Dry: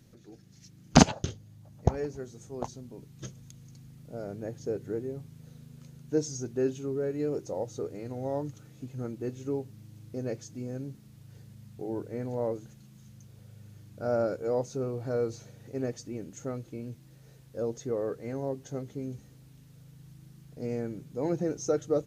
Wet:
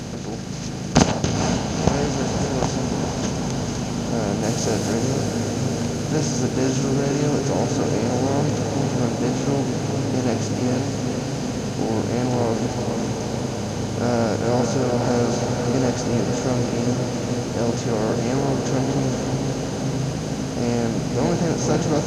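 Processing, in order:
compressor on every frequency bin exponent 0.4
0:04.43–0:04.93: high-shelf EQ 4,000 Hz +11.5 dB
feedback delay with all-pass diffusion 475 ms, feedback 74%, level −4.5 dB

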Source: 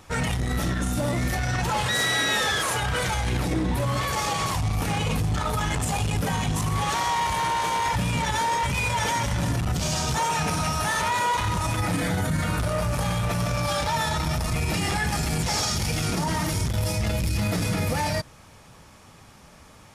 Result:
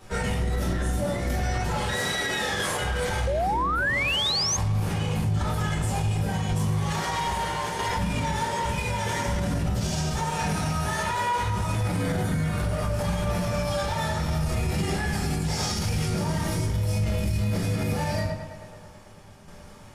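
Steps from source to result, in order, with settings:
rectangular room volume 41 cubic metres, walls mixed, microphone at 1.3 metres
shaped tremolo saw down 0.77 Hz, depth 45%
tape delay 109 ms, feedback 76%, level −12.5 dB, low-pass 4,100 Hz
sound drawn into the spectrogram rise, 0:03.27–0:04.57, 520–6,600 Hz −12 dBFS
brickwall limiter −12 dBFS, peak gain reduction 10 dB
level −6 dB

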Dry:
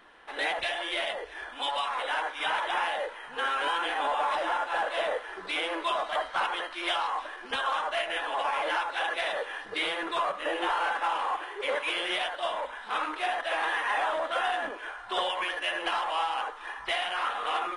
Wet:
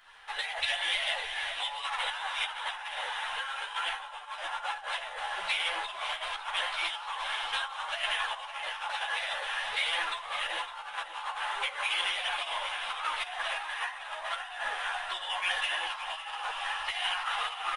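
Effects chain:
in parallel at +3 dB: fake sidechain pumping 80 BPM, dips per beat 1, −17 dB, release 149 ms
on the sum: parametric band 840 Hz +5 dB 0.43 octaves
on a send: feedback delay with all-pass diffusion 450 ms, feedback 71%, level −11 dB
on the sum: compressor whose output falls as the input rises −23 dBFS, ratio −0.5
guitar amp tone stack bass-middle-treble 10-0-10
single-tap delay 559 ms −13 dB
string-ensemble chorus

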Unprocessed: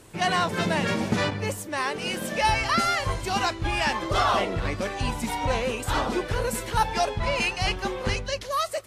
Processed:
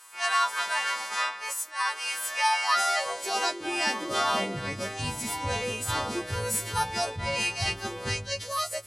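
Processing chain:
every partial snapped to a pitch grid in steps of 2 semitones
high-pass filter sweep 1,100 Hz → 91 Hz, 0:02.43–0:05.08
level that may rise only so fast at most 200 dB per second
level −5.5 dB

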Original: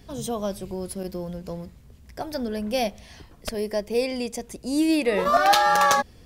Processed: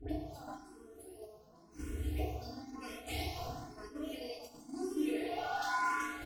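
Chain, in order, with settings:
pitch shifter gated in a rhythm +3.5 semitones, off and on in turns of 225 ms
all-pass dispersion highs, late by 94 ms, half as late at 1,200 Hz
tube saturation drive 19 dB, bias 0.75
automatic gain control gain up to 3.5 dB
gate with flip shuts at −31 dBFS, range −34 dB
downward compressor 12 to 1, threshold −56 dBFS, peak gain reduction 17.5 dB
low-shelf EQ 94 Hz −3 dB
feedback delay network reverb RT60 1.7 s, low-frequency decay 0.95×, high-frequency decay 0.65×, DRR −8.5 dB
noise gate −56 dBFS, range −7 dB
comb filter 2.8 ms, depth 70%
hum removal 56.57 Hz, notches 8
frequency shifter mixed with the dry sound +0.97 Hz
level +13.5 dB

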